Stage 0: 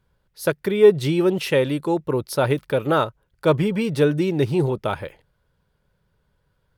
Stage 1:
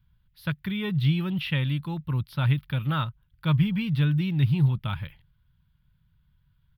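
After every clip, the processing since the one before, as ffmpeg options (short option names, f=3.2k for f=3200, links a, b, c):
-filter_complex "[0:a]acrossover=split=4600[a][b];[b]acompressor=threshold=-45dB:ratio=4:attack=1:release=60[c];[a][c]amix=inputs=2:normalize=0,firequalizer=gain_entry='entry(140,0);entry(410,-30);entry(1000,-13);entry(1800,-10);entry(3300,-4);entry(6900,-28);entry(13000,-4)':delay=0.05:min_phase=1,volume=4dB"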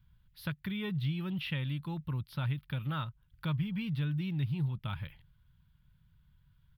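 -af "acompressor=threshold=-39dB:ratio=2"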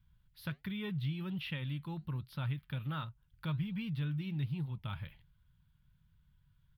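-af "flanger=delay=3.7:depth=4.7:regen=-80:speed=1.3:shape=sinusoidal,volume=1dB"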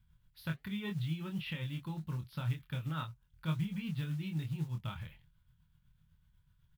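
-filter_complex "[0:a]acrusher=bits=7:mode=log:mix=0:aa=0.000001,tremolo=f=8:d=0.46,asplit=2[a][b];[b]adelay=25,volume=-5dB[c];[a][c]amix=inputs=2:normalize=0,volume=1dB"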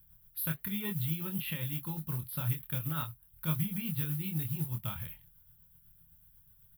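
-af "aexciter=amount=11.1:drive=8.3:freq=10k,volume=1.5dB"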